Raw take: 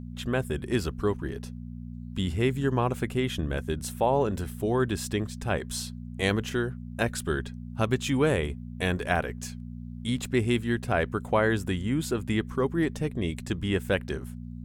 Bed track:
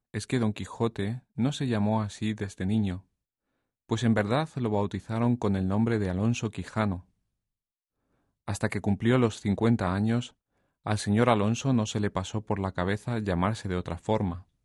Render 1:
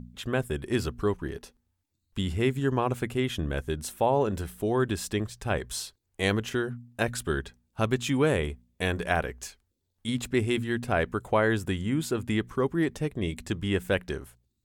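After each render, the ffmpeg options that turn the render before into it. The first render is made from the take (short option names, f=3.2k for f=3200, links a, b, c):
-af "bandreject=f=60:t=h:w=4,bandreject=f=120:t=h:w=4,bandreject=f=180:t=h:w=4,bandreject=f=240:t=h:w=4"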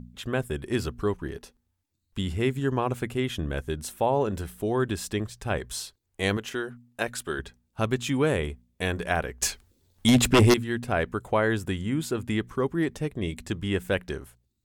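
-filter_complex "[0:a]asettb=1/sr,asplit=3[a][b][c];[a]atrim=end=6.374[d];[b]atrim=start=6.37:end=7.39,asetpts=PTS-STARTPTS,afade=t=in:d=0.004:c=qsin,afade=t=out:st=1.016:d=0.004:c=qsin,equalizer=f=64:w=0.38:g=-13[e];[c]atrim=start=7.386[f];[d][e]acrossfade=d=0.004:c1=hsin:c2=qsin[g];[g][f]acrossfade=d=0.004:c1=qsin:c2=hsin,asettb=1/sr,asplit=3[h][i][j];[h]atrim=end=9.424[k];[i]atrim=start=9.42:end=10.54,asetpts=PTS-STARTPTS,afade=t=in:d=0.004:c=qsin,afade=t=out:st=1.116:d=0.004:c=qsin,aeval=exprs='0.237*sin(PI/2*3.16*val(0)/0.237)':c=same[l];[j]atrim=start=10.536[m];[k][l]acrossfade=d=0.004:c1=hsin:c2=qsin[n];[n][m]acrossfade=d=0.004:c1=qsin:c2=hsin"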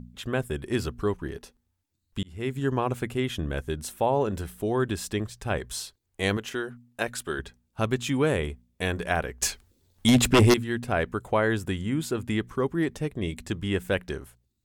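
-filter_complex "[0:a]asplit=2[a][b];[a]atrim=end=2.23,asetpts=PTS-STARTPTS,afade=t=out:st=2.226:d=0.004:c=hsin[c];[b]atrim=start=2.23,asetpts=PTS-STARTPTS,afade=t=in:d=0.41[d];[c][d]concat=n=2:v=0:a=1"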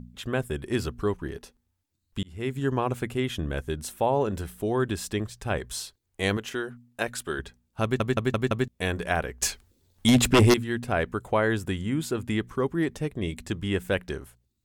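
-filter_complex "[0:a]asplit=6[a][b][c][d][e][f];[a]atrim=end=8.002[g];[b]atrim=start=7.828:end=8.002[h];[c]atrim=start=7.828:end=8.002[i];[d]atrim=start=7.828:end=8.002[j];[e]atrim=start=7.828:end=8.002[k];[f]atrim=start=8.678[l];[g][h]acrossfade=d=0.004:c1=hsin:c2=hsin[m];[m][i]acrossfade=d=0.004:c1=hsin:c2=hsin[n];[n][j]acrossfade=d=0.004:c1=hsin:c2=hsin[o];[o][k]acrossfade=d=0.004:c1=hsin:c2=hsin[p];[p][l]acrossfade=d=0.004:c1=hsin:c2=hsin"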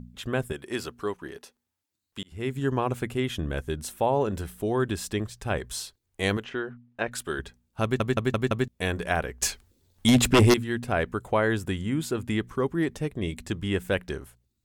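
-filter_complex "[0:a]asettb=1/sr,asplit=3[a][b][c];[a]atrim=end=0.524[d];[b]atrim=start=0.52:end=2.32,asetpts=PTS-STARTPTS,afade=t=in:d=0.004:c=qsin,afade=t=out:st=1.796:d=0.004:c=qsin,highpass=f=440:p=1[e];[c]atrim=start=2.316[f];[d][e]acrossfade=d=0.004:c1=hsin:c2=qsin[g];[g][f]acrossfade=d=0.004:c1=qsin:c2=hsin,asettb=1/sr,asplit=3[h][i][j];[h]atrim=end=6.444[k];[i]atrim=start=6.44:end=7.12,asetpts=PTS-STARTPTS,afade=t=in:d=0.004:c=qsin,afade=t=out:st=0.676:d=0.004:c=qsin,lowpass=2.8k[l];[j]atrim=start=7.116[m];[k][l]acrossfade=d=0.004:c1=hsin:c2=qsin[n];[n][m]acrossfade=d=0.004:c1=qsin:c2=hsin"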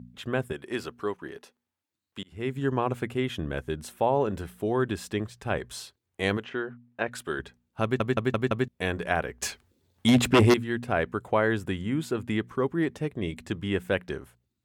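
-af "highpass=86,bass=f=250:g=-1,treble=f=4k:g=-7"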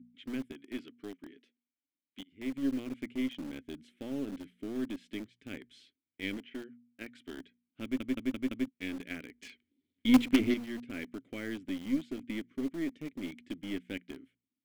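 -filter_complex "[0:a]asplit=3[a][b][c];[a]bandpass=f=270:t=q:w=8,volume=0dB[d];[b]bandpass=f=2.29k:t=q:w=8,volume=-6dB[e];[c]bandpass=f=3.01k:t=q:w=8,volume=-9dB[f];[d][e][f]amix=inputs=3:normalize=0,asplit=2[g][h];[h]acrusher=bits=4:dc=4:mix=0:aa=0.000001,volume=-7dB[i];[g][i]amix=inputs=2:normalize=0"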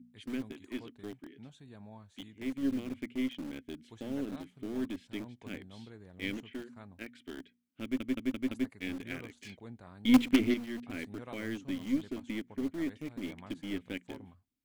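-filter_complex "[1:a]volume=-24.5dB[a];[0:a][a]amix=inputs=2:normalize=0"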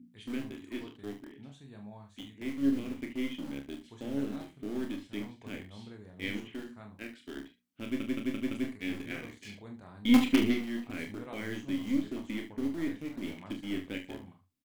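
-filter_complex "[0:a]asplit=2[a][b];[b]adelay=43,volume=-9dB[c];[a][c]amix=inputs=2:normalize=0,asplit=2[d][e];[e]aecho=0:1:29|73:0.501|0.266[f];[d][f]amix=inputs=2:normalize=0"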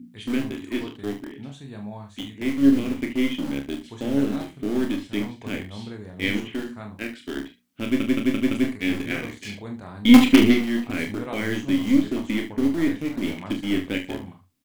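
-af "volume=11.5dB,alimiter=limit=-1dB:level=0:latency=1"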